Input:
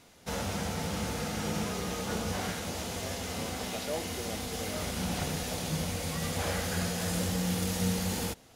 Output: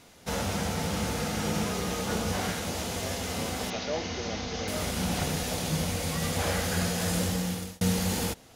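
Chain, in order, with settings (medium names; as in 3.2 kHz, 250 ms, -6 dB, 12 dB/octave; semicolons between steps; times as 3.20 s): 3.70–4.68 s: Chebyshev low-pass 6.4 kHz, order 6; 7.06–7.81 s: fade out equal-power; trim +3.5 dB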